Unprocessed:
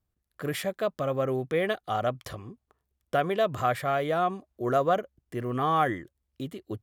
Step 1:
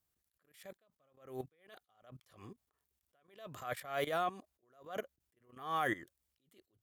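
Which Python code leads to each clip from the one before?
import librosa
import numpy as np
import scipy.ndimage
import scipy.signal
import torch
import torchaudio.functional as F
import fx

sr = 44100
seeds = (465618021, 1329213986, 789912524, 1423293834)

y = fx.tilt_eq(x, sr, slope=2.5)
y = fx.level_steps(y, sr, step_db=17)
y = fx.attack_slew(y, sr, db_per_s=120.0)
y = F.gain(torch.from_numpy(y), 1.0).numpy()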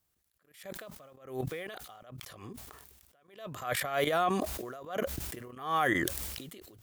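y = fx.sustainer(x, sr, db_per_s=35.0)
y = F.gain(torch.from_numpy(y), 6.0).numpy()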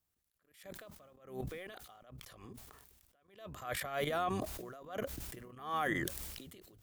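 y = fx.octave_divider(x, sr, octaves=1, level_db=-5.0)
y = F.gain(torch.from_numpy(y), -6.5).numpy()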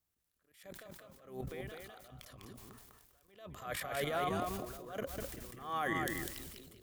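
y = fx.echo_feedback(x, sr, ms=200, feedback_pct=18, wet_db=-4.0)
y = F.gain(torch.from_numpy(y), -1.5).numpy()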